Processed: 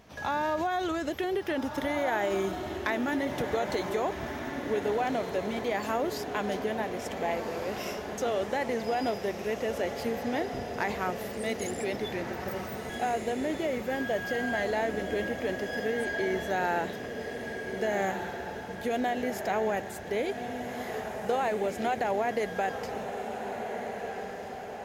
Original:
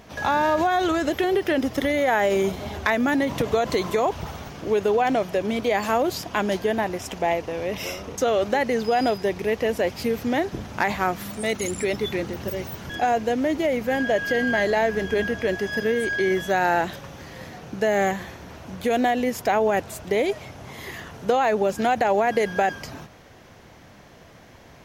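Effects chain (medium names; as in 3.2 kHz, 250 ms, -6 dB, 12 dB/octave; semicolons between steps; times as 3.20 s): echo that smears into a reverb 1564 ms, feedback 57%, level -6.5 dB; trim -8.5 dB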